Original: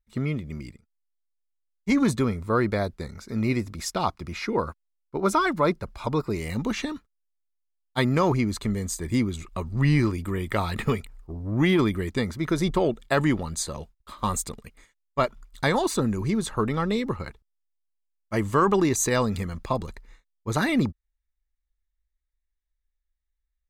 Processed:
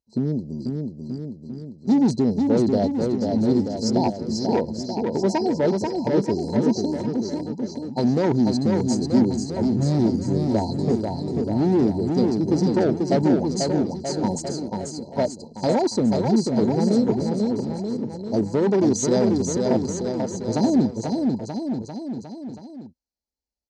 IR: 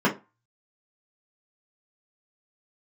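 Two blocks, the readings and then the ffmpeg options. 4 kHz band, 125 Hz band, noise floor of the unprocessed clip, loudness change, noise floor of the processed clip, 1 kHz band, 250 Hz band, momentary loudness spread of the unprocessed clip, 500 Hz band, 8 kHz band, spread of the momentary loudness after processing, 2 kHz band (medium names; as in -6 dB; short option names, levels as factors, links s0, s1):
+1.0 dB, +2.0 dB, -79 dBFS, +3.5 dB, -44 dBFS, -1.0 dB, +7.0 dB, 13 LU, +5.5 dB, 0.0 dB, 10 LU, -9.5 dB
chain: -af "afftfilt=real='re*(1-between(b*sr/4096,1000,4000))':imag='im*(1-between(b*sr/4096,1000,4000))':win_size=4096:overlap=0.75,asoftclip=type=hard:threshold=0.0944,highpass=150,equalizer=f=240:t=q:w=4:g=4,equalizer=f=1100:t=q:w=4:g=-10,equalizer=f=1500:t=q:w=4:g=-3,equalizer=f=2600:t=q:w=4:g=-4,lowpass=f=6000:w=0.5412,lowpass=f=6000:w=1.3066,aecho=1:1:490|931|1328|1685|2007:0.631|0.398|0.251|0.158|0.1,volume=1.78"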